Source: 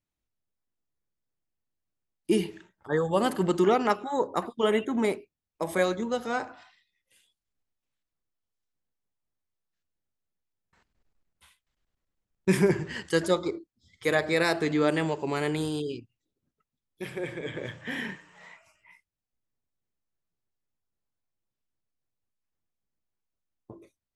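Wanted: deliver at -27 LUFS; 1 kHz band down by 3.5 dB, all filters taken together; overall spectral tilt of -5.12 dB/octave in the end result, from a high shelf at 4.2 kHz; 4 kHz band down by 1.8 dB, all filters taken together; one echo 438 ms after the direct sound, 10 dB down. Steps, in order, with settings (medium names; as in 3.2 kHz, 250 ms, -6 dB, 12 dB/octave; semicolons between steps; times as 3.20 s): peaking EQ 1 kHz -5 dB; peaking EQ 4 kHz -6 dB; treble shelf 4.2 kHz +7.5 dB; delay 438 ms -10 dB; trim +1.5 dB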